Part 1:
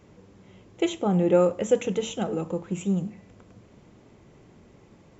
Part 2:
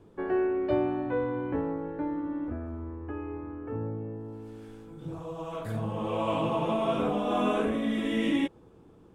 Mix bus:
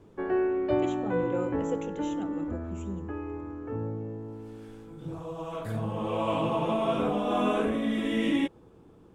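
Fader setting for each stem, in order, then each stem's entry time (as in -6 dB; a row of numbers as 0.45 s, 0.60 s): -13.0 dB, +0.5 dB; 0.00 s, 0.00 s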